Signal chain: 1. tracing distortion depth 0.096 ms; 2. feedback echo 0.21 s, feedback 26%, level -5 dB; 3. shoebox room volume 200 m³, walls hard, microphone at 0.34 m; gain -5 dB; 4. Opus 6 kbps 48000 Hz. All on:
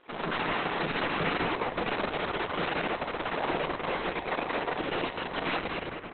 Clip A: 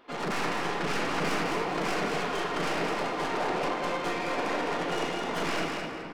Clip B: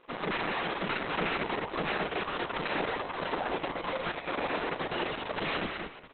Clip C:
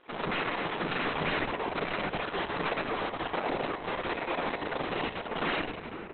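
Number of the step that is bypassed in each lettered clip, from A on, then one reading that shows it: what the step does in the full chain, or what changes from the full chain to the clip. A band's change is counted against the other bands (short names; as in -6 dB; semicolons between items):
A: 4, crest factor change -4.0 dB; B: 3, loudness change -2.0 LU; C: 2, loudness change -1.5 LU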